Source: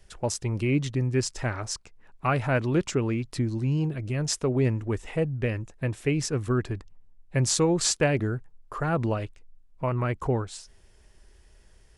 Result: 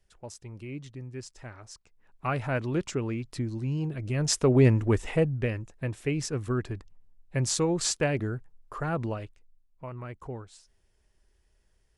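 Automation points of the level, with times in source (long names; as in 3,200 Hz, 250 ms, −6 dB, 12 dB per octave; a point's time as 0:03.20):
0:01.72 −14.5 dB
0:02.28 −4.5 dB
0:03.80 −4.5 dB
0:04.53 +4.5 dB
0:05.03 +4.5 dB
0:05.61 −3.5 dB
0:08.88 −3.5 dB
0:09.88 −12.5 dB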